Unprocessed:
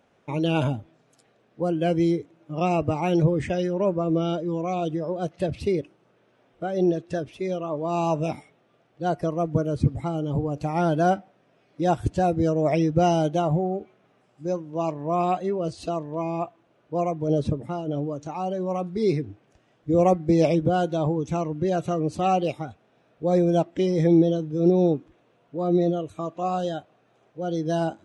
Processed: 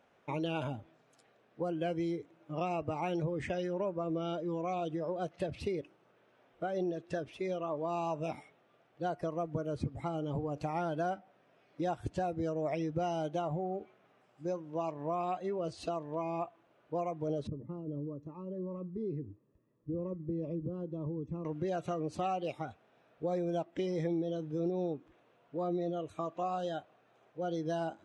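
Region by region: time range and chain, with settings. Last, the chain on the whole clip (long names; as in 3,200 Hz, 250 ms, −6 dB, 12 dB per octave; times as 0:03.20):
0:17.47–0:21.45: downward compressor 2 to 1, threshold −25 dBFS + moving average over 59 samples
whole clip: low-shelf EQ 480 Hz −9 dB; downward compressor 4 to 1, threshold −32 dBFS; high-shelf EQ 3,400 Hz −8.5 dB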